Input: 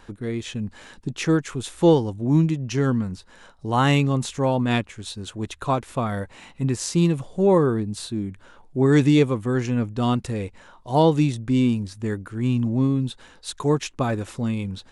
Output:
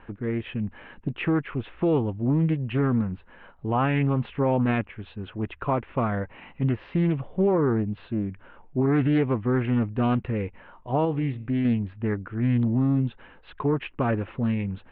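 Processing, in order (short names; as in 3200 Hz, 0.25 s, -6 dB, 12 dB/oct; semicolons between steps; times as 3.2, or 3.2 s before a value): steep low-pass 2900 Hz 48 dB/oct; limiter -15 dBFS, peak gain reduction 9 dB; 11.05–11.65 resonator 68 Hz, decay 0.6 s, harmonics all, mix 40%; Doppler distortion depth 0.31 ms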